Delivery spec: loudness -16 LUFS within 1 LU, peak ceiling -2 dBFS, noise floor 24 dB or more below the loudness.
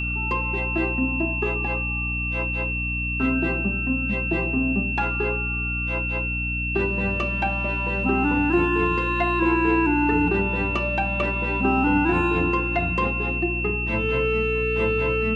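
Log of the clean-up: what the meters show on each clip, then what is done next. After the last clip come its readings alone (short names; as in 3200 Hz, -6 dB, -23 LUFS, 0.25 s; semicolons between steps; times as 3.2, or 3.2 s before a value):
hum 60 Hz; harmonics up to 300 Hz; hum level -26 dBFS; steady tone 2700 Hz; tone level -26 dBFS; loudness -22.5 LUFS; peak -8.0 dBFS; loudness target -16.0 LUFS
-> notches 60/120/180/240/300 Hz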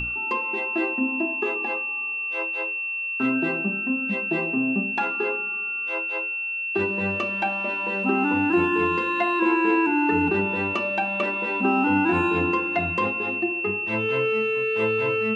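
hum none; steady tone 2700 Hz; tone level -26 dBFS
-> notch 2700 Hz, Q 30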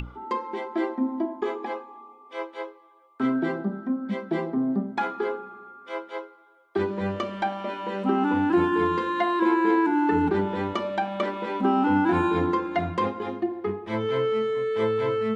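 steady tone none; loudness -26.0 LUFS; peak -10.5 dBFS; loudness target -16.0 LUFS
-> gain +10 dB; limiter -2 dBFS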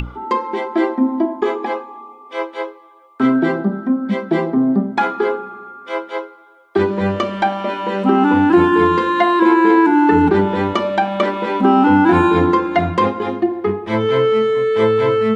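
loudness -16.0 LUFS; peak -2.0 dBFS; noise floor -44 dBFS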